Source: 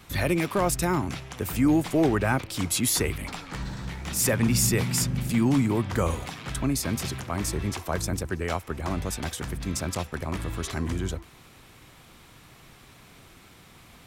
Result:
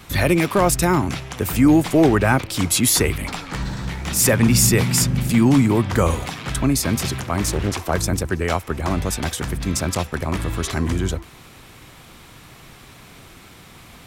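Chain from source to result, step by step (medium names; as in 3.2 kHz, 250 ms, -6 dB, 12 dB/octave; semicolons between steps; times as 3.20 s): 7.45–7.91 s: loudspeaker Doppler distortion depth 0.74 ms; trim +7.5 dB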